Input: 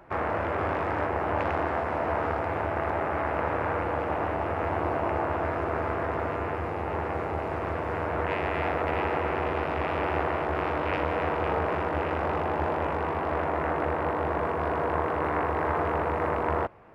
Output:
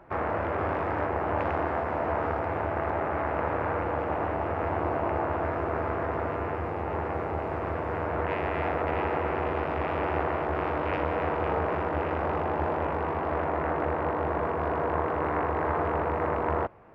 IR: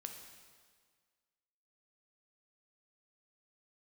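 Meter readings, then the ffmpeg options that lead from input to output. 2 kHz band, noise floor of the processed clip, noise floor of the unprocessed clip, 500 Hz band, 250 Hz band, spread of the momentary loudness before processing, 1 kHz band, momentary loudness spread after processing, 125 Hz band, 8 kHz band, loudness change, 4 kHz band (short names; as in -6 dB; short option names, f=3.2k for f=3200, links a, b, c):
-2.0 dB, -32 dBFS, -31 dBFS, -0.5 dB, 0.0 dB, 3 LU, -0.5 dB, 3 LU, 0.0 dB, n/a, -0.5 dB, -4.0 dB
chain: -af "highshelf=f=3.1k:g=-8.5"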